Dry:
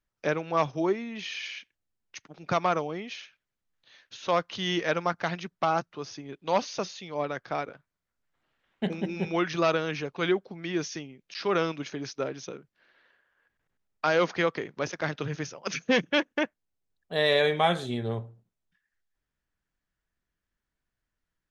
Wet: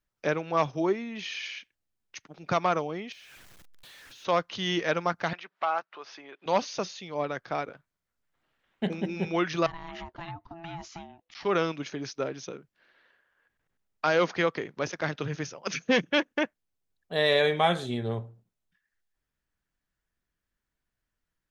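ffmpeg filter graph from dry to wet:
ffmpeg -i in.wav -filter_complex "[0:a]asettb=1/sr,asplit=3[link_01][link_02][link_03];[link_01]atrim=end=3.124[link_04];[link_02]atrim=start=3.12:end=4.25,asetpts=PTS-STARTPTS,afade=type=in:duration=0.004:curve=qsin,afade=type=out:start_time=1.126:duration=0.004:curve=qsin,aeval=exprs='val(0)+0.5*0.00531*sgn(val(0))':channel_layout=same,acompressor=threshold=-49dB:ratio=5:attack=3.2:release=140:knee=1:detection=peak[link_05];[link_03]atrim=start=4.246[link_06];[link_04][link_05]acrossfade=duration=0.004:curve1=hsin:curve2=qsin[link_07];[link_07][link_06]acrossfade=duration=0.004:curve1=qsin:curve2=hsin,asettb=1/sr,asplit=3[link_08][link_09][link_10];[link_08]atrim=end=5.334[link_11];[link_09]atrim=start=5.33:end=6.46,asetpts=PTS-STARTPTS,afade=type=in:duration=0.004:curve=qsin,afade=type=out:start_time=1.126:duration=0.004:curve=qsin,highpass=720,lowpass=2800,acompressor=mode=upward:threshold=-38dB:ratio=2.5:attack=3.2:release=140:knee=2.83:detection=peak[link_12];[link_10]atrim=start=6.456[link_13];[link_11][link_12]acrossfade=duration=0.004:curve1=hsin:curve2=qsin[link_14];[link_14][link_13]acrossfade=duration=0.004:curve1=qsin:curve2=hsin,asettb=1/sr,asplit=3[link_15][link_16][link_17];[link_15]atrim=end=9.664[link_18];[link_16]atrim=start=9.66:end=11.45,asetpts=PTS-STARTPTS,afade=type=in:duration=0.004:curve=qsin,afade=type=out:start_time=1.786:duration=0.004:curve=qsin,lowpass=frequency=2600:poles=1,acompressor=threshold=-32dB:ratio=12:attack=3.2:release=140:knee=1:detection=peak,aeval=exprs='val(0)*sin(2*PI*500*n/s)':channel_layout=same[link_19];[link_17]atrim=start=11.446[link_20];[link_18][link_19]acrossfade=duration=0.004:curve1=hsin:curve2=qsin[link_21];[link_21][link_20]acrossfade=duration=0.004:curve1=qsin:curve2=hsin" out.wav

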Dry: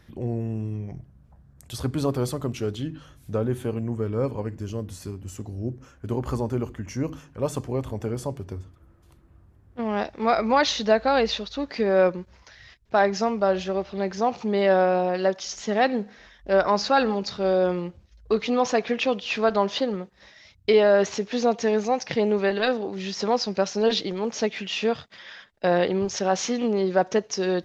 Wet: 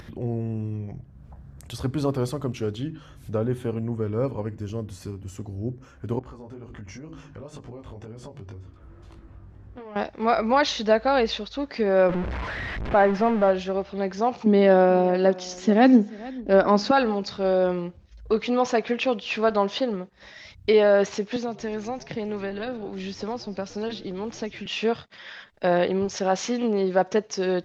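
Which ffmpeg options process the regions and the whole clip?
ffmpeg -i in.wav -filter_complex "[0:a]asettb=1/sr,asplit=3[link_01][link_02][link_03];[link_01]atrim=end=6.194[link_04];[link_02]atrim=start=6.19:end=9.96,asetpts=PTS-STARTPTS,afade=type=in:duration=0.004:curve=qsin,afade=type=out:start_time=3.766:duration=0.004:curve=qsin,lowpass=7100,acompressor=threshold=-36dB:ratio=6:attack=3.2:release=140:knee=1:detection=peak,flanger=delay=18:depth=2.7:speed=2[link_05];[link_03]atrim=start=9.956[link_06];[link_04][link_05]acrossfade=duration=0.004:curve1=hsin:curve2=qsin[link_07];[link_07][link_06]acrossfade=duration=0.004:curve1=qsin:curve2=hsin,asettb=1/sr,asplit=3[link_08][link_09][link_10];[link_08]atrim=end=12.094[link_11];[link_09]atrim=start=12.09:end=13.51,asetpts=PTS-STARTPTS,afade=type=in:duration=0.004:curve=qsin,afade=type=out:start_time=1.416:duration=0.004:curve=qsin,aeval=exprs='val(0)+0.5*0.0708*sgn(val(0))':channel_layout=same,lowpass=2200[link_12];[link_10]atrim=start=13.506[link_13];[link_11][link_12]acrossfade=duration=0.004:curve1=hsin:curve2=qsin[link_14];[link_14][link_13]acrossfade=duration=0.004:curve1=qsin:curve2=hsin,asettb=1/sr,asplit=3[link_15][link_16][link_17];[link_15]atrim=end=14.464[link_18];[link_16]atrim=start=14.46:end=16.91,asetpts=PTS-STARTPTS,afade=type=in:duration=0.004:curve=qsin,afade=type=out:start_time=2.446:duration=0.004:curve=qsin,equalizer=frequency=260:width_type=o:width=0.8:gain=14,aecho=1:1:436:0.1,atrim=end_sample=108045[link_19];[link_17]atrim=start=16.906[link_20];[link_18][link_19]acrossfade=duration=0.004:curve1=hsin:curve2=qsin[link_21];[link_21][link_20]acrossfade=duration=0.004:curve1=qsin:curve2=hsin,asettb=1/sr,asplit=3[link_22][link_23][link_24];[link_22]atrim=end=21.364[link_25];[link_23]atrim=start=21.36:end=24.66,asetpts=PTS-STARTPTS,afade=type=in:duration=0.004:curve=qsin,afade=type=out:start_time=3.296:duration=0.004:curve=qsin,acrossover=split=220|860[link_26][link_27][link_28];[link_26]acompressor=threshold=-35dB:ratio=4[link_29];[link_27]acompressor=threshold=-33dB:ratio=4[link_30];[link_28]acompressor=threshold=-38dB:ratio=4[link_31];[link_29][link_30][link_31]amix=inputs=3:normalize=0,asplit=6[link_32][link_33][link_34][link_35][link_36][link_37];[link_33]adelay=116,afreqshift=-95,volume=-19.5dB[link_38];[link_34]adelay=232,afreqshift=-190,volume=-23.7dB[link_39];[link_35]adelay=348,afreqshift=-285,volume=-27.8dB[link_40];[link_36]adelay=464,afreqshift=-380,volume=-32dB[link_41];[link_37]adelay=580,afreqshift=-475,volume=-36.1dB[link_42];[link_32][link_38][link_39][link_40][link_41][link_42]amix=inputs=6:normalize=0,atrim=end_sample=145530[link_43];[link_24]atrim=start=24.656[link_44];[link_25][link_43]acrossfade=duration=0.004:curve1=hsin:curve2=qsin[link_45];[link_45][link_44]acrossfade=duration=0.004:curve1=qsin:curve2=hsin,acompressor=mode=upward:threshold=-34dB:ratio=2.5,highshelf=frequency=6700:gain=-8" out.wav

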